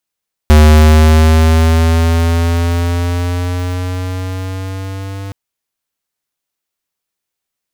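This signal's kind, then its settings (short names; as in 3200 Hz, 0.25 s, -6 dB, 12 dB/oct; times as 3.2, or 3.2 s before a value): gliding synth tone square, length 4.82 s, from 75.9 Hz, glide +4.5 st, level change -20.5 dB, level -4 dB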